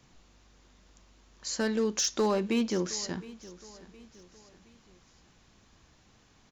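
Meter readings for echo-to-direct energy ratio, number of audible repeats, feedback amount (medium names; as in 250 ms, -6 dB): -18.0 dB, 3, 43%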